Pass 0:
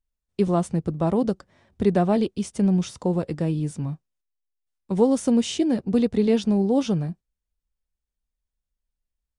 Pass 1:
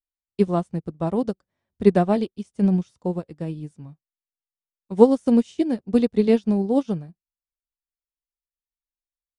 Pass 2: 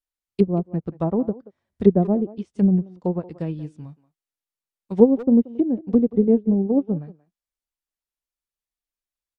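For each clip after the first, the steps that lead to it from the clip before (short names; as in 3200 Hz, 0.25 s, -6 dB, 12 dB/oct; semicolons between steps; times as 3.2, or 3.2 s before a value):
upward expander 2.5:1, over -33 dBFS; gain +7.5 dB
treble ducked by the level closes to 470 Hz, closed at -18.5 dBFS; speakerphone echo 0.18 s, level -17 dB; gain +2 dB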